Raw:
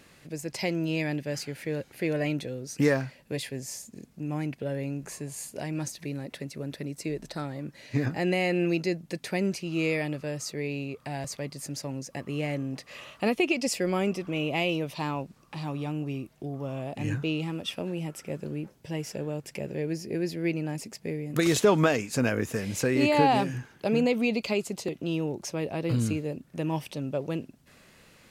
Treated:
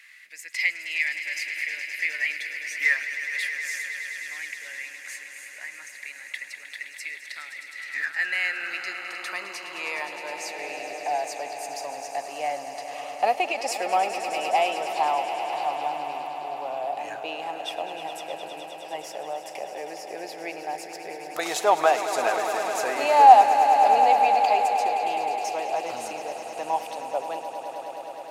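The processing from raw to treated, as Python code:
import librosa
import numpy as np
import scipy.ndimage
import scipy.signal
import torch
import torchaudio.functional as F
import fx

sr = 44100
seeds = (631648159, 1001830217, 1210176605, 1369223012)

y = fx.high_shelf_res(x, sr, hz=2000.0, db=-9.0, q=1.5, at=(5.28, 5.99))
y = fx.echo_swell(y, sr, ms=104, loudest=5, wet_db=-12.0)
y = fx.filter_sweep_highpass(y, sr, from_hz=2000.0, to_hz=750.0, start_s=7.7, end_s=10.92, q=6.9)
y = F.gain(torch.from_numpy(y), -1.0).numpy()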